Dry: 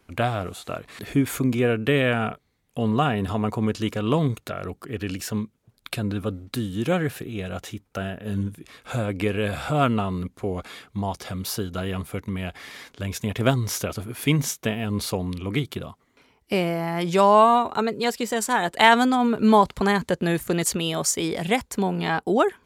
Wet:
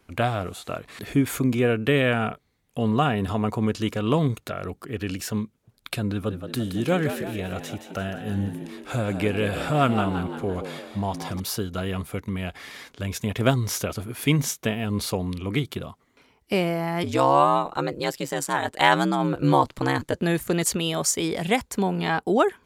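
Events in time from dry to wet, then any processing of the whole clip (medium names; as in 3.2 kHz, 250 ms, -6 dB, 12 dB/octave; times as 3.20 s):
6.13–11.40 s: frequency-shifting echo 171 ms, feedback 50%, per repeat +67 Hz, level -9 dB
17.03–20.15 s: ring modulator 69 Hz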